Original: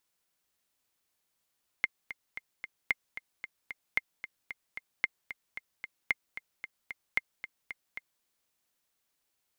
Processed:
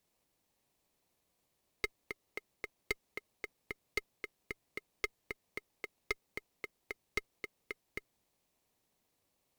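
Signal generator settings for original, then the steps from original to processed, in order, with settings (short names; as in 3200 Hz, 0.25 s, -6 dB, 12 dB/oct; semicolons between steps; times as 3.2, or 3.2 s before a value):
metronome 225 bpm, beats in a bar 4, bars 6, 2110 Hz, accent 13 dB -12.5 dBFS
elliptic high-pass 1600 Hz; in parallel at -2.5 dB: sample-and-hold 26×; on the sum: tube stage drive 25 dB, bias 0.3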